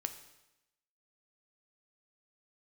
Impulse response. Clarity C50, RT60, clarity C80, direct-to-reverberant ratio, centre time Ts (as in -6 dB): 11.0 dB, 0.90 s, 13.0 dB, 8.0 dB, 11 ms